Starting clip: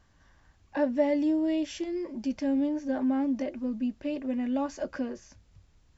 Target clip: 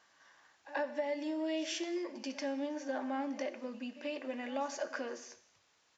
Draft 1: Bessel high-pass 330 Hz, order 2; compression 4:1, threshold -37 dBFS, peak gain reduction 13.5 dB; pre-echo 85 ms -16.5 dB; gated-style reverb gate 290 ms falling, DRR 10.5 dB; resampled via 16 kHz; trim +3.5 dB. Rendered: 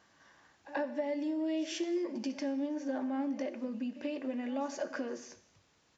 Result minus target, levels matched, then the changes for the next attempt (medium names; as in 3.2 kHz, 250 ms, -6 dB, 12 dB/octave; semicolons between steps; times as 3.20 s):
1 kHz band -4.0 dB
change: Bessel high-pass 740 Hz, order 2